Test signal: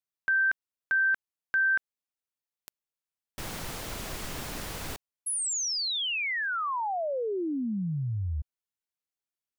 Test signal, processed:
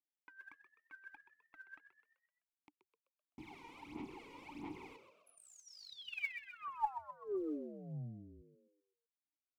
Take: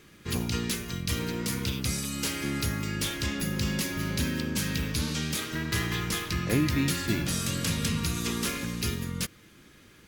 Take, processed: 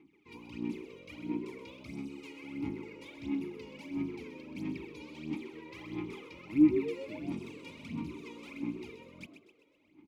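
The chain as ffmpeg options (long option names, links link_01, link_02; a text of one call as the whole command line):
ffmpeg -i in.wav -filter_complex "[0:a]asplit=3[link_01][link_02][link_03];[link_01]bandpass=frequency=300:width_type=q:width=8,volume=0dB[link_04];[link_02]bandpass=frequency=870:width_type=q:width=8,volume=-6dB[link_05];[link_03]bandpass=frequency=2240:width_type=q:width=8,volume=-9dB[link_06];[link_04][link_05][link_06]amix=inputs=3:normalize=0,aphaser=in_gain=1:out_gain=1:delay=2.1:decay=0.78:speed=1.5:type=sinusoidal,asplit=6[link_07][link_08][link_09][link_10][link_11][link_12];[link_08]adelay=128,afreqshift=78,volume=-10dB[link_13];[link_09]adelay=256,afreqshift=156,volume=-16.4dB[link_14];[link_10]adelay=384,afreqshift=234,volume=-22.8dB[link_15];[link_11]adelay=512,afreqshift=312,volume=-29.1dB[link_16];[link_12]adelay=640,afreqshift=390,volume=-35.5dB[link_17];[link_07][link_13][link_14][link_15][link_16][link_17]amix=inputs=6:normalize=0,volume=-4dB" out.wav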